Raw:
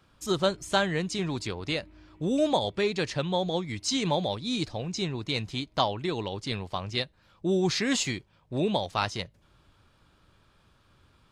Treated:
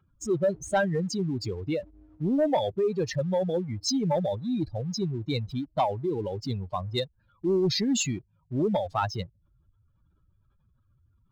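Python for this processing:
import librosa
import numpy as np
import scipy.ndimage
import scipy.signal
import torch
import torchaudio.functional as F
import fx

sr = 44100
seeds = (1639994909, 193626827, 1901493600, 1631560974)

y = fx.spec_expand(x, sr, power=2.6)
y = fx.leveller(y, sr, passes=1)
y = y * 10.0 ** (-1.5 / 20.0)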